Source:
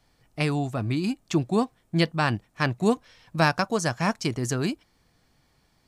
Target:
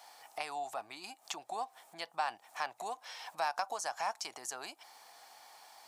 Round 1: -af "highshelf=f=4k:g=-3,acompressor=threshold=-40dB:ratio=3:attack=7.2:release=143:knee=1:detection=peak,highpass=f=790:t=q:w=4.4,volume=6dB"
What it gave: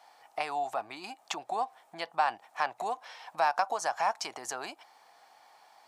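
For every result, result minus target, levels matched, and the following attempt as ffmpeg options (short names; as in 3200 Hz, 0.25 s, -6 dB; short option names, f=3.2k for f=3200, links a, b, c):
compressor: peak gain reduction -8 dB; 8000 Hz band -5.0 dB
-af "highshelf=f=4k:g=-3,acompressor=threshold=-51dB:ratio=3:attack=7.2:release=143:knee=1:detection=peak,highpass=f=790:t=q:w=4.4,volume=6dB"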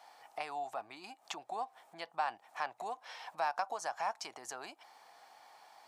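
8000 Hz band -5.0 dB
-af "highshelf=f=4k:g=9,acompressor=threshold=-51dB:ratio=3:attack=7.2:release=143:knee=1:detection=peak,highpass=f=790:t=q:w=4.4,volume=6dB"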